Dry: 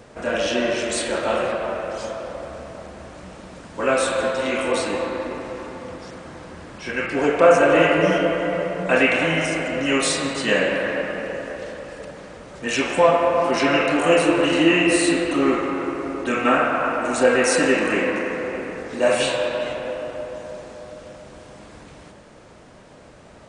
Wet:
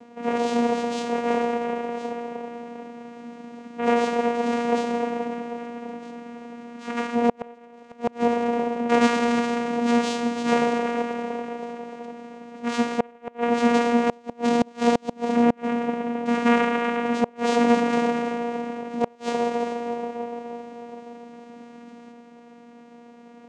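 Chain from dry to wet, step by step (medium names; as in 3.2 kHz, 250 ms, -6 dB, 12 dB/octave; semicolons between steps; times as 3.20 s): vocoder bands 4, saw 237 Hz; inverted gate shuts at -9 dBFS, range -31 dB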